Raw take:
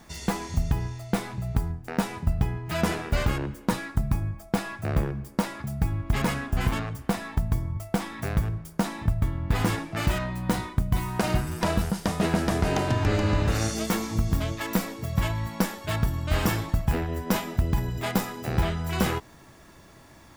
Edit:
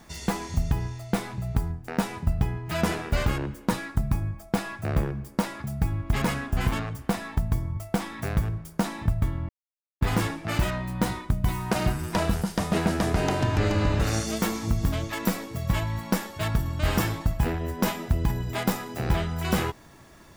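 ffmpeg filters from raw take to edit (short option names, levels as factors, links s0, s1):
-filter_complex "[0:a]asplit=2[s0][s1];[s0]atrim=end=9.49,asetpts=PTS-STARTPTS,afade=t=out:st=9.486:d=0.004:c=hsin,apad=pad_dur=0.52[s2];[s1]atrim=start=9.49,asetpts=PTS-STARTPTS,afade=t=in:d=0.004:c=hsin[s3];[s2][s3]concat=n=2:v=0:a=1"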